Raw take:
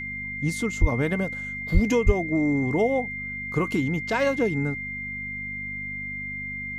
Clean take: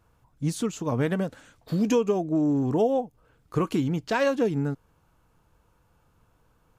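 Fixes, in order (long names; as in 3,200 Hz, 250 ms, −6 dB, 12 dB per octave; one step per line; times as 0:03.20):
hum removal 49.7 Hz, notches 5
notch filter 2,100 Hz, Q 30
0:00.80–0:00.92: high-pass filter 140 Hz 24 dB per octave
0:01.73–0:01.85: high-pass filter 140 Hz 24 dB per octave
0:02.05–0:02.17: high-pass filter 140 Hz 24 dB per octave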